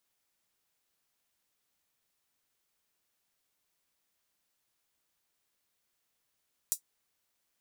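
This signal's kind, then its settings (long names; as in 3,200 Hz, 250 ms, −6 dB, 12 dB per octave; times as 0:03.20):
closed synth hi-hat, high-pass 7,100 Hz, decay 0.10 s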